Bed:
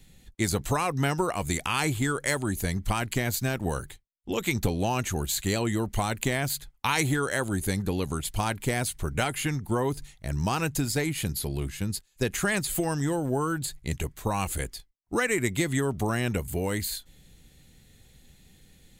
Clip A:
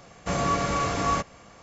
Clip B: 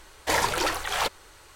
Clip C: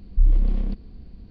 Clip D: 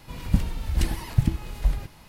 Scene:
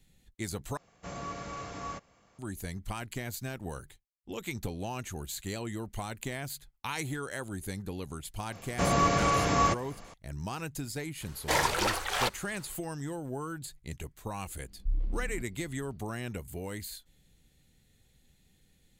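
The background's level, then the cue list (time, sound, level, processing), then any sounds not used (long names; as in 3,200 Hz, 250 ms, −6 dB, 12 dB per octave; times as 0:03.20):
bed −10 dB
0:00.77: overwrite with A −14.5 dB
0:08.52: mix in A + parametric band 1,400 Hz −2.5 dB 0.23 octaves
0:11.21: mix in B −3 dB
0:14.68: mix in C −13.5 dB
not used: D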